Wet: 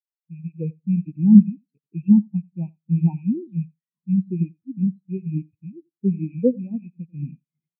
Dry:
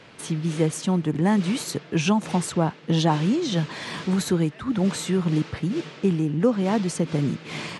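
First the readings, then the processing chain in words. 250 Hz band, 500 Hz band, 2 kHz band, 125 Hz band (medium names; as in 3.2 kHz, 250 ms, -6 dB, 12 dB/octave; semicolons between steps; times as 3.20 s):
+3.5 dB, -6.0 dB, under -25 dB, +0.5 dB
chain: rattle on loud lows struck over -27 dBFS, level -13 dBFS; feedback delay 89 ms, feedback 38%, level -7.5 dB; spectral contrast expander 4:1; trim +6 dB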